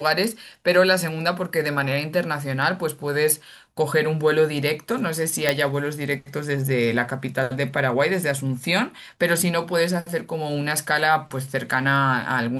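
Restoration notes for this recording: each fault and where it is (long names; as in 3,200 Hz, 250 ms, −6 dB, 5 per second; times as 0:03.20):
0:05.49: click −4 dBFS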